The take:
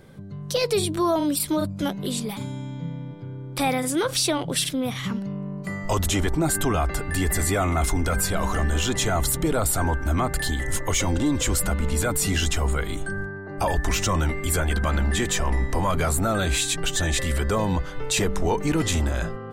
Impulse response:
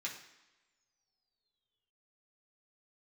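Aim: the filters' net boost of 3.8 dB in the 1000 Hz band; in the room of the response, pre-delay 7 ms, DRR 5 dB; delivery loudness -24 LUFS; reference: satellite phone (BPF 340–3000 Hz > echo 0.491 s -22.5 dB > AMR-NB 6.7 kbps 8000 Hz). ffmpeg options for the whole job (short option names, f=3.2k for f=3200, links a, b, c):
-filter_complex "[0:a]equalizer=f=1k:t=o:g=5,asplit=2[a][b];[1:a]atrim=start_sample=2205,adelay=7[c];[b][c]afir=irnorm=-1:irlink=0,volume=-5.5dB[d];[a][d]amix=inputs=2:normalize=0,highpass=340,lowpass=3k,aecho=1:1:491:0.075,volume=4dB" -ar 8000 -c:a libopencore_amrnb -b:a 6700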